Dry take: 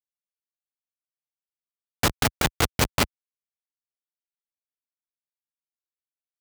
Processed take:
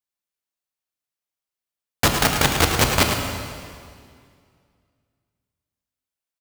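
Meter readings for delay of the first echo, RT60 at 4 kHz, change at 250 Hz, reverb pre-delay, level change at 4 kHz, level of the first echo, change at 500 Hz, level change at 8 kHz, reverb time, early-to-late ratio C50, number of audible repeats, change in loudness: 107 ms, 2.0 s, +5.0 dB, 18 ms, +6.0 dB, −8.5 dB, +6.0 dB, +6.0 dB, 2.1 s, 3.0 dB, 1, +5.0 dB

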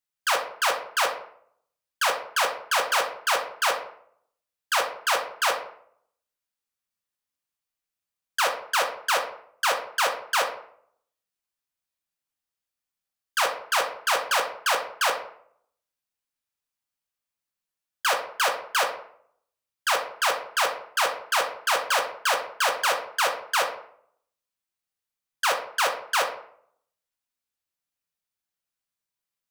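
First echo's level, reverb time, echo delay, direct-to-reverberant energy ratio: no echo audible, 0.60 s, no echo audible, 2.5 dB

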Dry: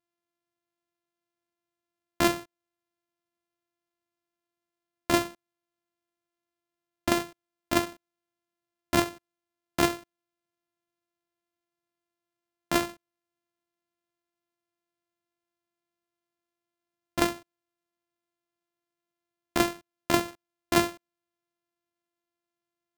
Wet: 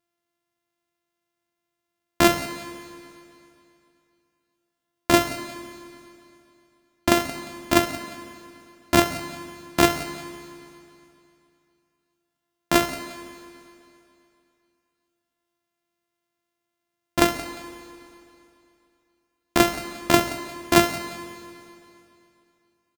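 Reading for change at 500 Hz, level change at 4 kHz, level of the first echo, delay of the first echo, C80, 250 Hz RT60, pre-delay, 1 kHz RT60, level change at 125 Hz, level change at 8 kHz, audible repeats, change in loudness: +7.0 dB, +7.0 dB, −16.5 dB, 176 ms, 11.0 dB, 2.6 s, 19 ms, 2.7 s, +7.0 dB, +7.0 dB, 2, +5.5 dB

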